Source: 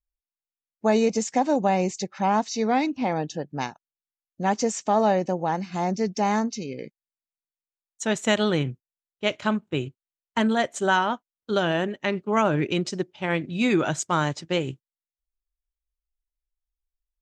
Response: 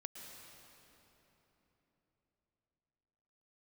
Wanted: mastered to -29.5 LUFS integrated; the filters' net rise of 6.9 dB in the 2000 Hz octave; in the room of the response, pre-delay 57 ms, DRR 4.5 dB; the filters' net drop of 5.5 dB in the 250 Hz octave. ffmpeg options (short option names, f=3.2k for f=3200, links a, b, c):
-filter_complex "[0:a]equalizer=f=250:t=o:g=-7.5,equalizer=f=2k:t=o:g=9,asplit=2[a][b];[1:a]atrim=start_sample=2205,adelay=57[c];[b][c]afir=irnorm=-1:irlink=0,volume=-1dB[d];[a][d]amix=inputs=2:normalize=0,volume=-6dB"